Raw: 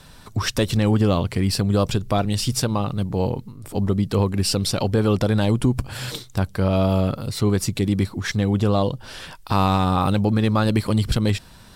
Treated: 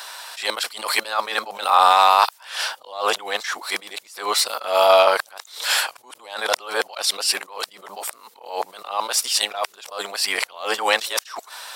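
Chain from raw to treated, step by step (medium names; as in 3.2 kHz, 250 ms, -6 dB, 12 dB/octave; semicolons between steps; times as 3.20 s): reverse the whole clip; high-pass 690 Hz 24 dB/octave; loudness maximiser +15.5 dB; attacks held to a fixed rise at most 120 dB/s; trim -1 dB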